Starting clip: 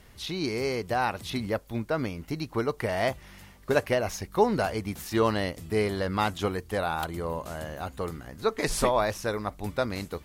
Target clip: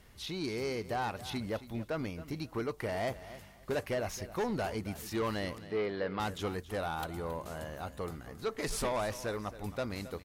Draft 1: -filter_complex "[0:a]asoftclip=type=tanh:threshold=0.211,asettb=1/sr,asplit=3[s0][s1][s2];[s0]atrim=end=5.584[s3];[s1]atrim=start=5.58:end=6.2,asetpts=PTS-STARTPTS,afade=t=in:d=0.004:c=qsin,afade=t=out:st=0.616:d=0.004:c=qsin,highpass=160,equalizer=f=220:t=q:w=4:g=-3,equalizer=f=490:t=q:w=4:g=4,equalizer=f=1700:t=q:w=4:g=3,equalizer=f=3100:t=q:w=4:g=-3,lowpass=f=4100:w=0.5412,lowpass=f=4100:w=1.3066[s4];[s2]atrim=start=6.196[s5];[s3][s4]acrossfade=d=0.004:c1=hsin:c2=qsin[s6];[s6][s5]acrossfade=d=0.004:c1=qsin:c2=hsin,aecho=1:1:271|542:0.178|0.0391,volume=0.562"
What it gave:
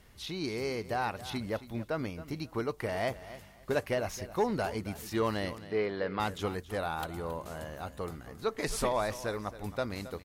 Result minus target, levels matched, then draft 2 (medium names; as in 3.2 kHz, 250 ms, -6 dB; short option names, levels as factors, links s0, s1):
saturation: distortion -10 dB
-filter_complex "[0:a]asoftclip=type=tanh:threshold=0.075,asettb=1/sr,asplit=3[s0][s1][s2];[s0]atrim=end=5.584[s3];[s1]atrim=start=5.58:end=6.2,asetpts=PTS-STARTPTS,afade=t=in:d=0.004:c=qsin,afade=t=out:st=0.616:d=0.004:c=qsin,highpass=160,equalizer=f=220:t=q:w=4:g=-3,equalizer=f=490:t=q:w=4:g=4,equalizer=f=1700:t=q:w=4:g=3,equalizer=f=3100:t=q:w=4:g=-3,lowpass=f=4100:w=0.5412,lowpass=f=4100:w=1.3066[s4];[s2]atrim=start=6.196[s5];[s3][s4]acrossfade=d=0.004:c1=hsin:c2=qsin[s6];[s6][s5]acrossfade=d=0.004:c1=qsin:c2=hsin,aecho=1:1:271|542:0.178|0.0391,volume=0.562"